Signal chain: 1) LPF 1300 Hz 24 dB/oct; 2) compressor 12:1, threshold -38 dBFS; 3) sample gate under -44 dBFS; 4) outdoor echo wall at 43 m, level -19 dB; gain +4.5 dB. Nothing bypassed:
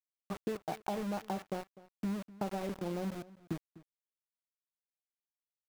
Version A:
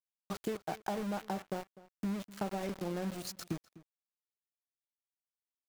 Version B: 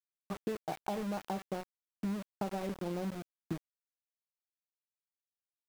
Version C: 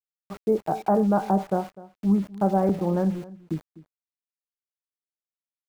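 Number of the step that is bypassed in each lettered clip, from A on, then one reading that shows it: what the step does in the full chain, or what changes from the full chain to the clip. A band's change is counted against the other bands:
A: 1, 8 kHz band +5.5 dB; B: 4, echo-to-direct -20.0 dB to none; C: 2, crest factor change -3.0 dB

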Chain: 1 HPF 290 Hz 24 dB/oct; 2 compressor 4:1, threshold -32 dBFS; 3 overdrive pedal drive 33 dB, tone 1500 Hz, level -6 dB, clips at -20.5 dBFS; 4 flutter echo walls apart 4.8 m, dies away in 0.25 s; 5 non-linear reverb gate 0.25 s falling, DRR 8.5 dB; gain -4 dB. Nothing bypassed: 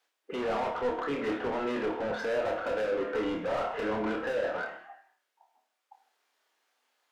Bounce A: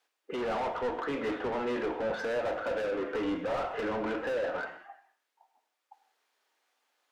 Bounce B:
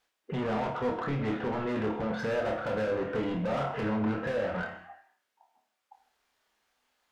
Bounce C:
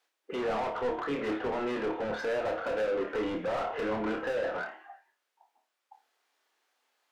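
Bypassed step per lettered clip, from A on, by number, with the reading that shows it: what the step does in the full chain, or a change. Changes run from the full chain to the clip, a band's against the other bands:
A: 4, echo-to-direct -3.0 dB to -8.5 dB; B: 1, 125 Hz band +13.5 dB; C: 5, echo-to-direct -3.0 dB to -5.5 dB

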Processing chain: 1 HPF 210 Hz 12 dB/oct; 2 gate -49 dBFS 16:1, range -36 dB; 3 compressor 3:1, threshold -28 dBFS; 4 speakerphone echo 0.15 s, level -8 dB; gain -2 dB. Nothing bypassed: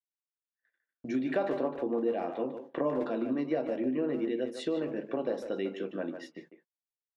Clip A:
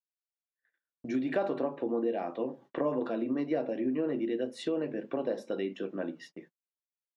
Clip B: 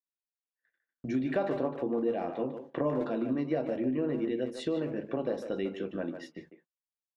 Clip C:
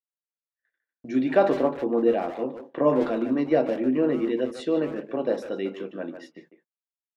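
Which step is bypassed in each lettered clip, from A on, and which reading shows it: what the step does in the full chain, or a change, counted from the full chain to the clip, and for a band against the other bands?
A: 4, echo-to-direct -10.0 dB to none; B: 1, 125 Hz band +6.5 dB; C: 3, mean gain reduction 5.5 dB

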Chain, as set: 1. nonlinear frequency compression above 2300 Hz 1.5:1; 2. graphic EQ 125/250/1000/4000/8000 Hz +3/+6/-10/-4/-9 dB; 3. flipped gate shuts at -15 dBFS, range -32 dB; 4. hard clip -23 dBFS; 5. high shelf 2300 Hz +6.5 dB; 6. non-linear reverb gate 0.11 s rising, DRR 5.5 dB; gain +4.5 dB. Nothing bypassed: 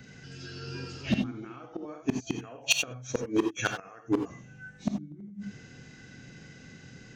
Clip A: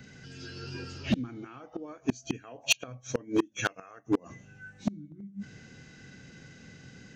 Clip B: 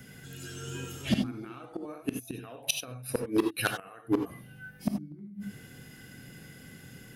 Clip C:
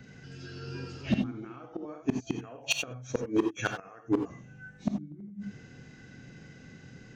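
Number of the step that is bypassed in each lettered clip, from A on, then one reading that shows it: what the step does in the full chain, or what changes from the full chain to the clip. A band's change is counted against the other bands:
6, loudness change -1.0 LU; 1, 4 kHz band -3.0 dB; 5, 8 kHz band -5.0 dB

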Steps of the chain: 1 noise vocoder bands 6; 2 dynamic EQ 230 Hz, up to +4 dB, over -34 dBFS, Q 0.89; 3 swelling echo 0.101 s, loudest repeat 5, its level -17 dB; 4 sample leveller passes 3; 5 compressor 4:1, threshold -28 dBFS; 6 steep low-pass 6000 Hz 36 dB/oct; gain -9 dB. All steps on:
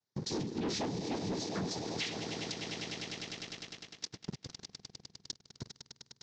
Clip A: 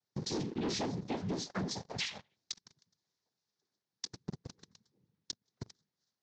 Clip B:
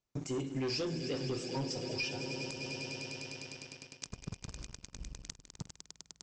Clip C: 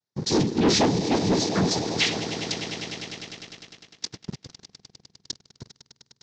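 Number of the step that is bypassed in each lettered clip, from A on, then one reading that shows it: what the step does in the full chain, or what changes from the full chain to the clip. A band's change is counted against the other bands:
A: 3, momentary loudness spread change +3 LU; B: 1, 1 kHz band -4.0 dB; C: 5, mean gain reduction 8.5 dB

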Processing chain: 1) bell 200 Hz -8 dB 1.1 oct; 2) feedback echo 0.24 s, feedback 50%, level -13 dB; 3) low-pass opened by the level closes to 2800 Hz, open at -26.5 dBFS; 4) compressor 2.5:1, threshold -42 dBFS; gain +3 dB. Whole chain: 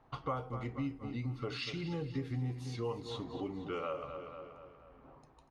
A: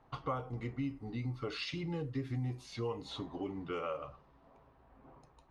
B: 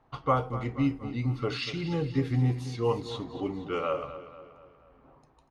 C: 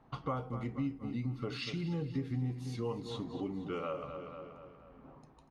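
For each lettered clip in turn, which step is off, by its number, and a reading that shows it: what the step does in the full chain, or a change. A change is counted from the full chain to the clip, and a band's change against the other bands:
2, momentary loudness spread change -11 LU; 4, mean gain reduction 6.0 dB; 1, 250 Hz band +3.0 dB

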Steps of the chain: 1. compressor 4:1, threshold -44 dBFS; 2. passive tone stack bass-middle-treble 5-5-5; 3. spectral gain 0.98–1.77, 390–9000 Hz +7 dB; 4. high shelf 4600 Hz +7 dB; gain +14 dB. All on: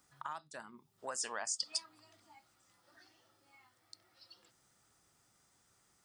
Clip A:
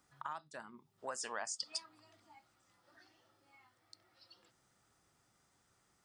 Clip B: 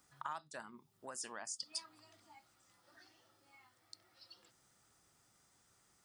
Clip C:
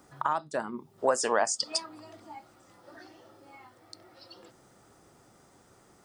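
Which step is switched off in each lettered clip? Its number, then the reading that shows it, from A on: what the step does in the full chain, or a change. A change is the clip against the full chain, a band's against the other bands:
4, 8 kHz band -5.0 dB; 3, 125 Hz band +5.0 dB; 2, 8 kHz band -9.5 dB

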